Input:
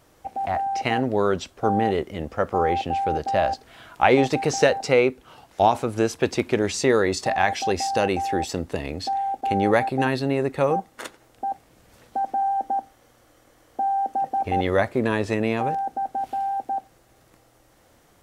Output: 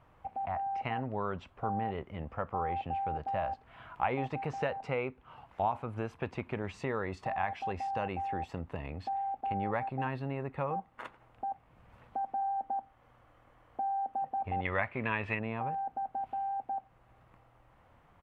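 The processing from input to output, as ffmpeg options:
ffmpeg -i in.wav -filter_complex "[0:a]asettb=1/sr,asplit=3[link_01][link_02][link_03];[link_01]atrim=end=14.654[link_04];[link_02]atrim=start=14.65:end=15.39,asetpts=PTS-STARTPTS,afade=type=in:duration=0.004:curve=qsin,afade=type=out:start_time=0.736:duration=0.004:curve=qsin,equalizer=frequency=2400:width_type=o:width=1.3:gain=15[link_05];[link_03]atrim=start=15.386[link_06];[link_04][link_05]acrossfade=duration=0.004:curve1=hsin:curve2=qsin[link_07];[link_07][link_06]acrossfade=duration=0.004:curve1=qsin:curve2=hsin,firequalizer=gain_entry='entry(130,0);entry(330,-10);entry(1000,2);entry(1600,-5);entry(2600,-5);entry(3900,-17);entry(5600,-24)':delay=0.05:min_phase=1,acompressor=threshold=-42dB:ratio=1.5,volume=-1.5dB" out.wav

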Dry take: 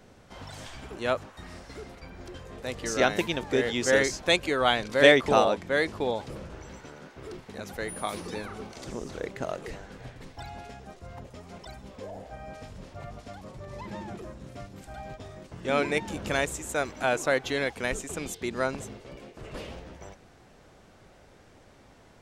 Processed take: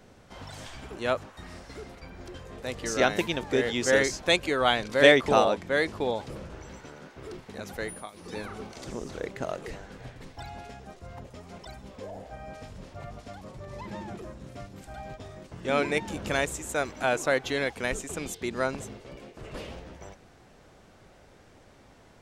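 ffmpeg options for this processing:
ffmpeg -i in.wav -filter_complex "[0:a]asplit=3[link_01][link_02][link_03];[link_01]atrim=end=8.11,asetpts=PTS-STARTPTS,afade=type=out:start_time=7.85:duration=0.26:silence=0.158489[link_04];[link_02]atrim=start=8.11:end=8.14,asetpts=PTS-STARTPTS,volume=-16dB[link_05];[link_03]atrim=start=8.14,asetpts=PTS-STARTPTS,afade=type=in:duration=0.26:silence=0.158489[link_06];[link_04][link_05][link_06]concat=n=3:v=0:a=1" out.wav

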